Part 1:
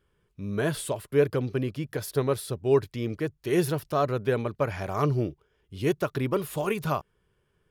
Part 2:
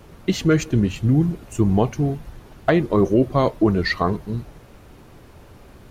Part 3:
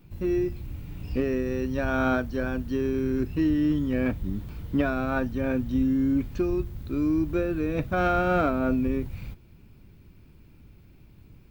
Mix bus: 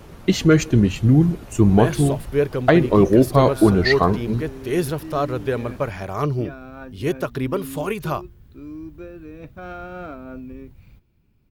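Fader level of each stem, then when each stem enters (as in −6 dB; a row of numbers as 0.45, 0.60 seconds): +2.5, +3.0, −11.0 decibels; 1.20, 0.00, 1.65 seconds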